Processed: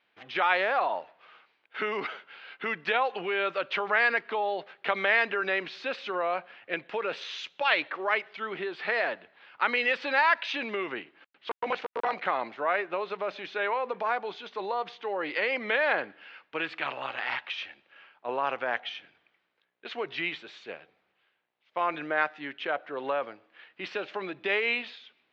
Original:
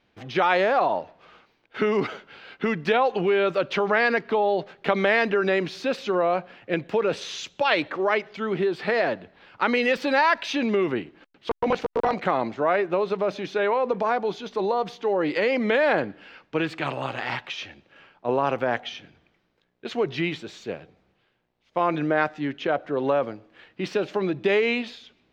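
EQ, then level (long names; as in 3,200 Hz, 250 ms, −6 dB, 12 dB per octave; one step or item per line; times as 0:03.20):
resonant band-pass 2,500 Hz, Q 0.54
low-pass filter 3,800 Hz 12 dB per octave
0.0 dB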